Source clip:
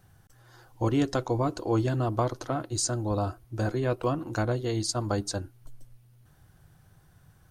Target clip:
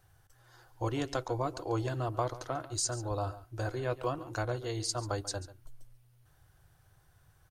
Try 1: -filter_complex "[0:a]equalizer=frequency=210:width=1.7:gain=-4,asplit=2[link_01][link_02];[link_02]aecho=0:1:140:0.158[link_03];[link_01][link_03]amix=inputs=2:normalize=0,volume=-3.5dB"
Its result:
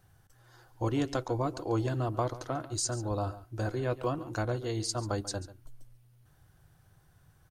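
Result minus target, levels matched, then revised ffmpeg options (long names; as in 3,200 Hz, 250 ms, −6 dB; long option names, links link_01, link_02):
250 Hz band +3.0 dB
-filter_complex "[0:a]equalizer=frequency=210:width=1.7:gain=-15.5,asplit=2[link_01][link_02];[link_02]aecho=0:1:140:0.158[link_03];[link_01][link_03]amix=inputs=2:normalize=0,volume=-3.5dB"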